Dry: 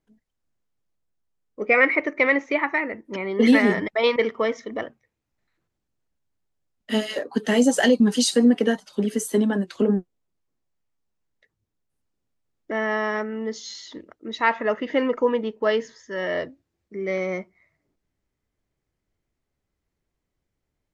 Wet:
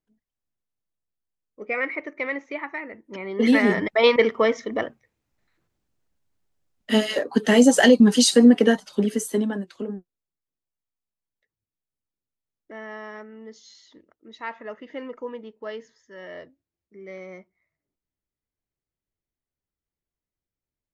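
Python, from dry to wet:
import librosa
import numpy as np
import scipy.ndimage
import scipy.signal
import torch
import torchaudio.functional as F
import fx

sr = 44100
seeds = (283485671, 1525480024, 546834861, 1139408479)

y = fx.gain(x, sr, db=fx.line((2.82, -9.0), (4.03, 3.5), (8.87, 3.5), (9.49, -4.0), (9.99, -13.0)))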